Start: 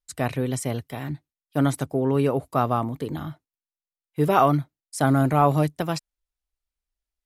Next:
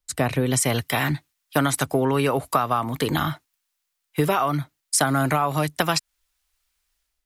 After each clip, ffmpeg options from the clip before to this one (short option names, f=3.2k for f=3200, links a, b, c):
-filter_complex "[0:a]acrossover=split=150|920[a][b][c];[c]dynaudnorm=f=410:g=3:m=12dB[d];[a][b][d]amix=inputs=3:normalize=0,alimiter=limit=-6.5dB:level=0:latency=1:release=364,acompressor=threshold=-24dB:ratio=10,volume=7dB"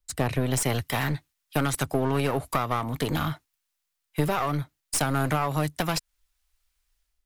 -af "lowshelf=f=90:g=10,aeval=exprs='clip(val(0),-1,0.0631)':c=same,volume=-3.5dB"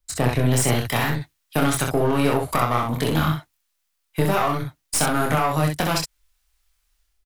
-af "aecho=1:1:25|64:0.631|0.631,volume=3dB"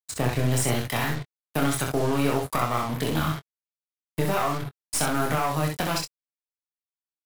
-filter_complex "[0:a]acrusher=bits=4:mix=0:aa=0.5,asplit=2[a][b];[b]adelay=22,volume=-13.5dB[c];[a][c]amix=inputs=2:normalize=0,volume=-4.5dB"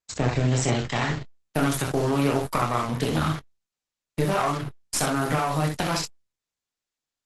-af "volume=2dB" -ar 48000 -c:a libopus -b:a 12k